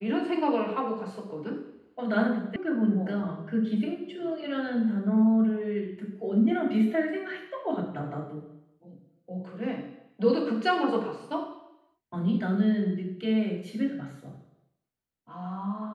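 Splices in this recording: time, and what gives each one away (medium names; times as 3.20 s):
2.56 s: sound stops dead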